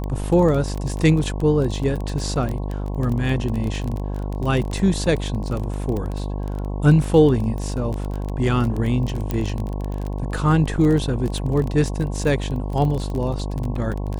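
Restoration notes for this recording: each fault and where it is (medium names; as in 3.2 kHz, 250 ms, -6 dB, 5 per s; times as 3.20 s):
buzz 50 Hz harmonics 22 -26 dBFS
crackle 21 per s -24 dBFS
4.71 s: dropout 2.5 ms
9.31 s: pop -11 dBFS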